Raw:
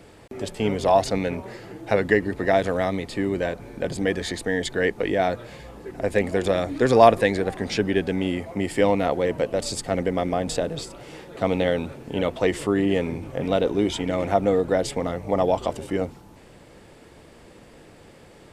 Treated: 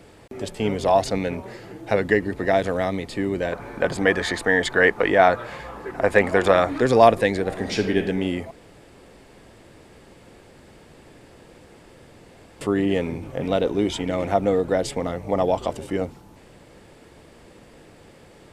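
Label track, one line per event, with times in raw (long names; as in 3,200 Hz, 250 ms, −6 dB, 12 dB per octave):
3.520000	6.810000	parametric band 1,200 Hz +13 dB 1.8 octaves
7.450000	7.980000	thrown reverb, RT60 0.86 s, DRR 5 dB
8.510000	12.610000	fill with room tone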